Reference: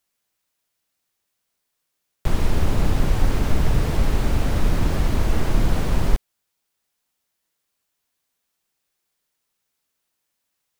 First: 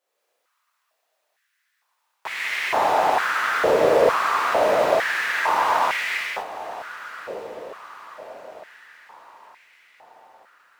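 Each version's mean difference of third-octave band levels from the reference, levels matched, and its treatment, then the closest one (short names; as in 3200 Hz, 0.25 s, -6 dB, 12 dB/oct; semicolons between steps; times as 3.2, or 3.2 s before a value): 12.0 dB: high shelf 3700 Hz -10.5 dB; on a send: diffused feedback echo 1.071 s, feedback 51%, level -15 dB; on the sum: non-linear reverb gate 0.29 s flat, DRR -8 dB; stepped high-pass 2.2 Hz 510–2100 Hz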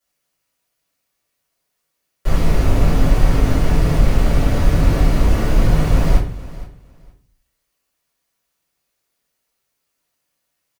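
3.0 dB: HPF 66 Hz 6 dB/oct; feedback echo 0.465 s, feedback 18%, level -17.5 dB; shoebox room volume 35 m³, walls mixed, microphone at 2.4 m; gain -8.5 dB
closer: second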